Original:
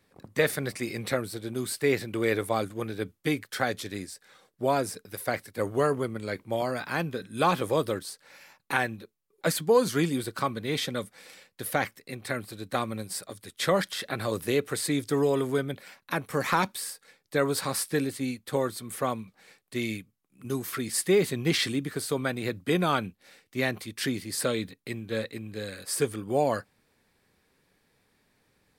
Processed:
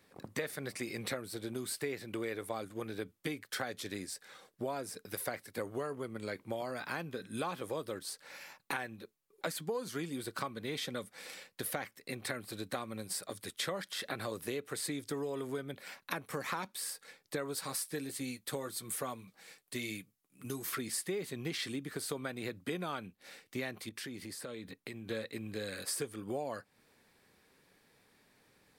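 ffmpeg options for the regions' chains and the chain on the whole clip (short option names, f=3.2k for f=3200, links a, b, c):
-filter_complex "[0:a]asettb=1/sr,asplit=3[a][b][c];[a]atrim=end=17.554[d];[b]atrim=start=17.55:end=20.65,asetpts=PTS-STARTPTS,afade=t=in:d=0.004:c=qsin,afade=t=out:st=3.096:d=0.004:c=qsin,highshelf=f=4.1k:g=7,flanger=delay=6:depth=1.1:regen=-50:speed=1.6:shape=sinusoidal[e];[c]atrim=start=20.646[f];[d][e]acrossfade=d=0.004:c1=hsin:c2=qsin[g];[g][f]acrossfade=d=0.004:c1=qsin:c2=hsin,asettb=1/sr,asplit=3[h][i][j];[h]atrim=end=23.894[k];[i]atrim=start=23.89:end=25.09,asetpts=PTS-STARTPTS,afade=t=in:d=0.004:c=qsin,afade=t=out:st=1.196:d=0.004:c=qsin,acompressor=threshold=-41dB:ratio=8:attack=3.2:release=140:knee=1:detection=peak,adynamicequalizer=threshold=0.00112:dfrequency=2300:dqfactor=0.7:tfrequency=2300:tqfactor=0.7:attack=5:release=100:ratio=0.375:range=2.5:mode=cutabove:tftype=highshelf[l];[j]atrim=start=25.086[m];[k][l]acrossfade=d=0.004:c1=hsin:c2=qsin[n];[n][m]acrossfade=d=0.004:c1=qsin:c2=hsin,acompressor=threshold=-37dB:ratio=6,lowshelf=f=110:g=-8.5,volume=2dB"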